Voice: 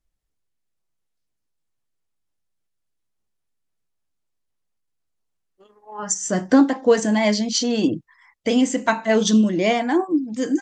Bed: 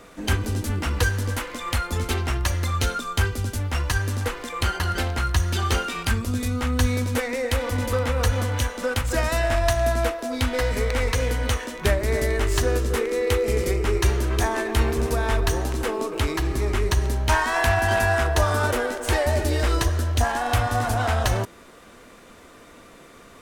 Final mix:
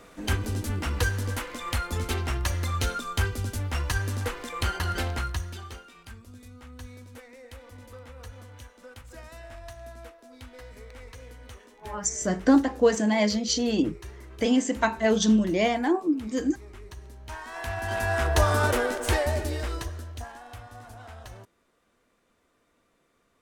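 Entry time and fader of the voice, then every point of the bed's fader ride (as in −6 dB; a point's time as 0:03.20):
5.95 s, −4.5 dB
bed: 0:05.15 −4 dB
0:05.82 −22 dB
0:17.16 −22 dB
0:18.38 −1 dB
0:19.03 −1 dB
0:20.56 −22 dB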